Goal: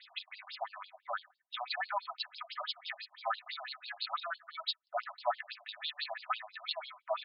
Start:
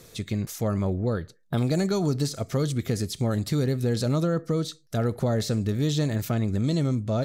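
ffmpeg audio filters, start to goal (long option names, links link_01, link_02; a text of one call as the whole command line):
ffmpeg -i in.wav -af "aecho=1:1:4:0.55,afftfilt=real='re*between(b*sr/1024,790*pow(3800/790,0.5+0.5*sin(2*PI*6*pts/sr))/1.41,790*pow(3800/790,0.5+0.5*sin(2*PI*6*pts/sr))*1.41)':imag='im*between(b*sr/1024,790*pow(3800/790,0.5+0.5*sin(2*PI*6*pts/sr))/1.41,790*pow(3800/790,0.5+0.5*sin(2*PI*6*pts/sr))*1.41)':win_size=1024:overlap=0.75,volume=4.5dB" out.wav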